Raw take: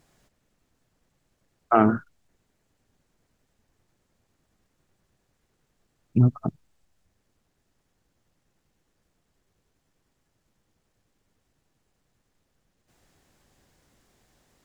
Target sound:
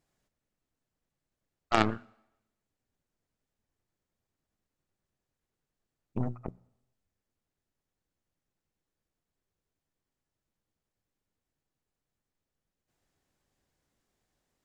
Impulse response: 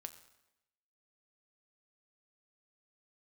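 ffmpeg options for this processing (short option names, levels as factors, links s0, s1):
-filter_complex "[0:a]bandreject=f=60:t=h:w=6,bandreject=f=120:t=h:w=6,bandreject=f=180:t=h:w=6,bandreject=f=240:t=h:w=6,aeval=exprs='0.631*(cos(1*acos(clip(val(0)/0.631,-1,1)))-cos(1*PI/2))+0.158*(cos(3*acos(clip(val(0)/0.631,-1,1)))-cos(3*PI/2))+0.0562*(cos(6*acos(clip(val(0)/0.631,-1,1)))-cos(6*PI/2))+0.0708*(cos(8*acos(clip(val(0)/0.631,-1,1)))-cos(8*PI/2))':c=same,asplit=2[s0][s1];[1:a]atrim=start_sample=2205[s2];[s1][s2]afir=irnorm=-1:irlink=0,volume=0.422[s3];[s0][s3]amix=inputs=2:normalize=0,volume=0.596"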